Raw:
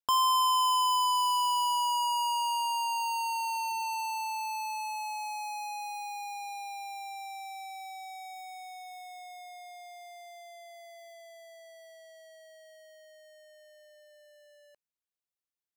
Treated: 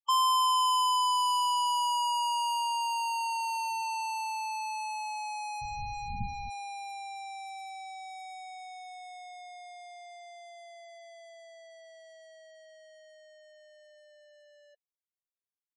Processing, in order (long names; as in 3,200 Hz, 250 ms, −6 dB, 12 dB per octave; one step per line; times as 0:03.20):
0:05.61–0:06.49: wind on the microphone 99 Hz −34 dBFS
spectral peaks only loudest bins 16